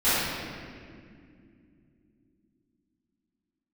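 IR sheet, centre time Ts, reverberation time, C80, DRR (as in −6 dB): 145 ms, 2.4 s, −1.5 dB, −18.5 dB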